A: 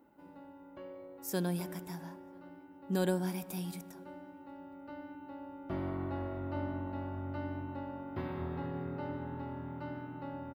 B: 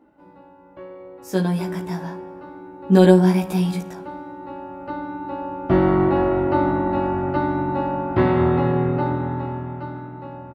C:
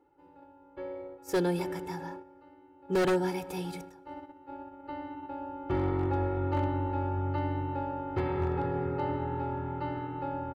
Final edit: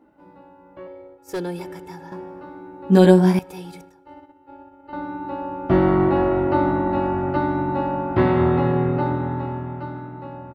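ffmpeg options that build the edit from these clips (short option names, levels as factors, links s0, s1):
-filter_complex "[2:a]asplit=2[s0][s1];[1:a]asplit=3[s2][s3][s4];[s2]atrim=end=0.872[s5];[s0]atrim=start=0.868:end=2.122[s6];[s3]atrim=start=2.118:end=3.392[s7];[s1]atrim=start=3.388:end=4.932[s8];[s4]atrim=start=4.928[s9];[s5][s6]acrossfade=d=0.004:c1=hsin:c2=hsin[s10];[s10][s7]acrossfade=d=0.004:c1=hsin:c2=hsin[s11];[s11][s8]acrossfade=d=0.004:c1=hsin:c2=hsin[s12];[s12][s9]acrossfade=d=0.004:c1=hsin:c2=hsin"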